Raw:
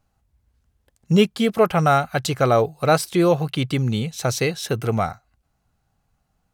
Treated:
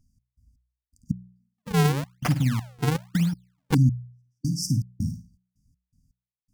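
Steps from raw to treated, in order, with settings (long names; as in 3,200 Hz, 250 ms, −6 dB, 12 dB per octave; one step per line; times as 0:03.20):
one scale factor per block 7 bits
high-shelf EQ 9,800 Hz −10 dB
flutter between parallel walls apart 9.2 metres, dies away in 0.34 s
downward compressor, threshold −16 dBFS, peak gain reduction 7 dB
gate pattern "x.x..x...xx.xx." 81 BPM −60 dB
linear-phase brick-wall band-stop 300–4,600 Hz
hum removal 61.09 Hz, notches 3
0:01.58–0:03.75: sample-and-hold swept by an LFO 42×, swing 160% 1 Hz
level +4.5 dB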